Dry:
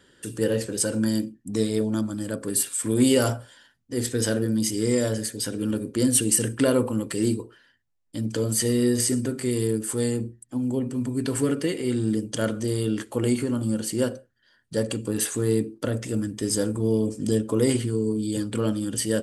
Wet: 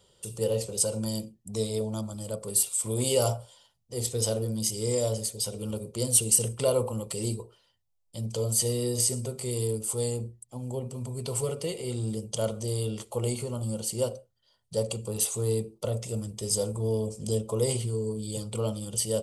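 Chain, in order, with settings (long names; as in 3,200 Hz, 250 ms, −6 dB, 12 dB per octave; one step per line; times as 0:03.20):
phaser with its sweep stopped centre 690 Hz, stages 4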